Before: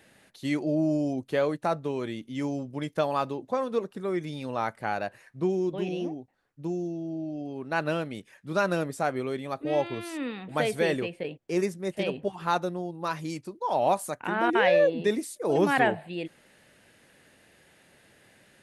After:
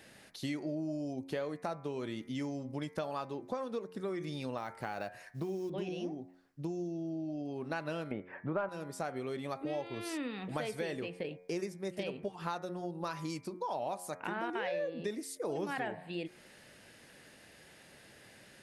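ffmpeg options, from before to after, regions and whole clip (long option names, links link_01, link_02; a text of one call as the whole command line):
ffmpeg -i in.wav -filter_complex "[0:a]asettb=1/sr,asplit=3[link_01][link_02][link_03];[link_01]atrim=end=4.574[link_04];[link_02]atrim=start=4.57:end=5.7,asetpts=PTS-STARTPTS,afade=type=in:duration=0.004:curve=qsin,afade=type=out:start_time=1.126:duration=0.004:curve=qsin,acrusher=bits=8:mode=log:mix=0:aa=0.000001,acompressor=threshold=-28dB:ratio=2.5:attack=3.2:release=140:knee=1:detection=peak[link_05];[link_03]atrim=start=5.696[link_06];[link_04][link_05]acrossfade=duration=0.004:curve1=hsin:curve2=qsin[link_07];[link_07][link_06]acrossfade=duration=0.004:curve1=qsin:curve2=hsin,asettb=1/sr,asplit=3[link_08][link_09][link_10];[link_08]atrim=end=8.114[link_11];[link_09]atrim=start=8.11:end=8.69,asetpts=PTS-STARTPTS,afade=type=in:duration=0.004:curve=qsin,afade=type=out:start_time=0.576:duration=0.004:curve=qsin,lowpass=frequency=2100:width=0.5412,lowpass=frequency=2100:width=1.3066,equalizer=frequency=780:width=0.71:gain=9,acontrast=31[link_12];[link_10]atrim=start=8.686[link_13];[link_11][link_12]acrossfade=duration=0.004:curve1=hsin:curve2=qsin[link_14];[link_14][link_13]acrossfade=duration=0.004:curve1=qsin:curve2=hsin,equalizer=frequency=5100:width=3:gain=5,bandreject=frequency=90.29:width_type=h:width=4,bandreject=frequency=180.58:width_type=h:width=4,bandreject=frequency=270.87:width_type=h:width=4,bandreject=frequency=361.16:width_type=h:width=4,bandreject=frequency=451.45:width_type=h:width=4,bandreject=frequency=541.74:width_type=h:width=4,bandreject=frequency=632.03:width_type=h:width=4,bandreject=frequency=722.32:width_type=h:width=4,bandreject=frequency=812.61:width_type=h:width=4,bandreject=frequency=902.9:width_type=h:width=4,bandreject=frequency=993.19:width_type=h:width=4,bandreject=frequency=1083.48:width_type=h:width=4,bandreject=frequency=1173.77:width_type=h:width=4,bandreject=frequency=1264.06:width_type=h:width=4,bandreject=frequency=1354.35:width_type=h:width=4,bandreject=frequency=1444.64:width_type=h:width=4,bandreject=frequency=1534.93:width_type=h:width=4,bandreject=frequency=1625.22:width_type=h:width=4,bandreject=frequency=1715.51:width_type=h:width=4,bandreject=frequency=1805.8:width_type=h:width=4,bandreject=frequency=1896.09:width_type=h:width=4,bandreject=frequency=1986.38:width_type=h:width=4,bandreject=frequency=2076.67:width_type=h:width=4,bandreject=frequency=2166.96:width_type=h:width=4,bandreject=frequency=2257.25:width_type=h:width=4,bandreject=frequency=2347.54:width_type=h:width=4,bandreject=frequency=2437.83:width_type=h:width=4,acompressor=threshold=-37dB:ratio=5,volume=1.5dB" out.wav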